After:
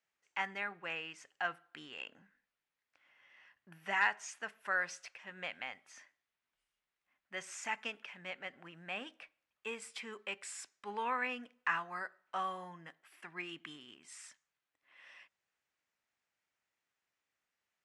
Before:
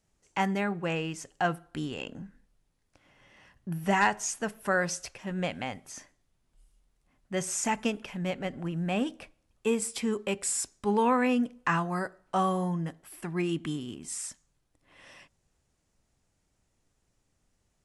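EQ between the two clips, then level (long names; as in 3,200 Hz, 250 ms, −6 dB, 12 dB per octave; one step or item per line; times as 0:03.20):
resonant band-pass 2,000 Hz, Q 1.2
−2.5 dB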